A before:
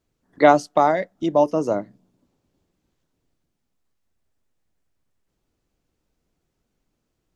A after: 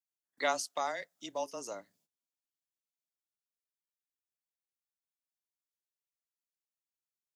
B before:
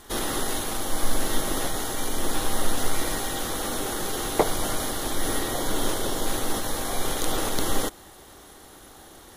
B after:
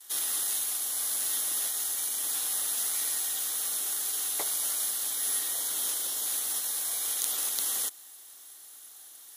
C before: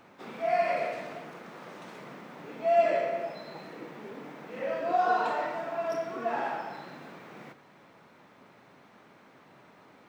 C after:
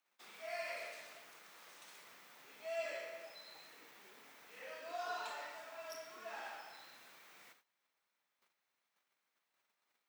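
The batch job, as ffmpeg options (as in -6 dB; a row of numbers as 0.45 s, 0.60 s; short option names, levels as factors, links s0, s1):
-af "agate=range=0.141:threshold=0.00224:ratio=16:detection=peak,aderivative,afreqshift=-20,volume=1.19"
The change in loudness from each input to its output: -17.0 LU, 0.0 LU, -18.0 LU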